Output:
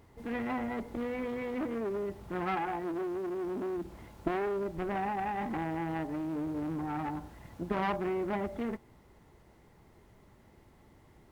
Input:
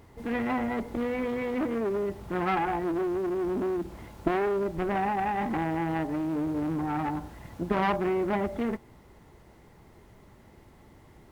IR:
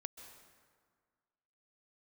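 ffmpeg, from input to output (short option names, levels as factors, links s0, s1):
-filter_complex "[0:a]asettb=1/sr,asplit=3[s0][s1][s2];[s0]atrim=end=2.554[s3];[s1]atrim=start=2.55:end=3.73,asetpts=PTS-STARTPTS,afade=t=in:d=0.004:c=qsin,afade=t=out:st=1.176:d=0.004:c=qsin,lowshelf=f=100:g=-9.5[s4];[s2]atrim=start=3.726[s5];[s3][s4]acrossfade=d=0.004:c1=hsin:c2=qsin[s6];[s6][s5]acrossfade=d=0.004:c1=qsin:c2=hsin,volume=0.531"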